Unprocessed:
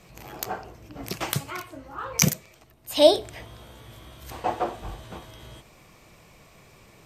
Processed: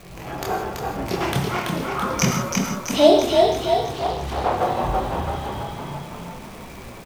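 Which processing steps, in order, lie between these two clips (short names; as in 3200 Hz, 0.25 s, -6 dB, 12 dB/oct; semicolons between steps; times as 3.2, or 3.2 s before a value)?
LPF 2000 Hz 6 dB/oct; in parallel at +2 dB: compressor, threshold -35 dBFS, peak gain reduction 22.5 dB; on the sum: chorus voices 6, 0.29 Hz, delay 26 ms, depth 3 ms; crackle 360/s -41 dBFS; frequency-shifting echo 0.332 s, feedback 59%, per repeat +32 Hz, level -3.5 dB; non-linear reverb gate 0.19 s flat, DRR 4 dB; 3.92–4.58 Doppler distortion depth 0.65 ms; gain +6 dB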